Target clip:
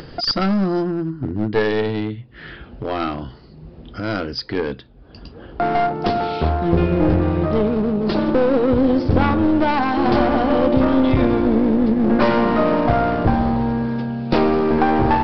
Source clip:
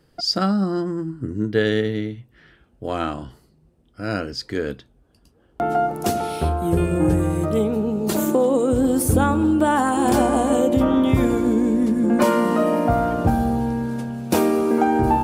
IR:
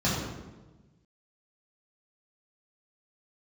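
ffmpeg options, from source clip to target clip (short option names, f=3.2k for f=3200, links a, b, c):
-af "acompressor=mode=upward:threshold=-26dB:ratio=2.5,aresample=11025,aeval=exprs='clip(val(0),-1,0.0794)':c=same,aresample=44100,volume=4dB"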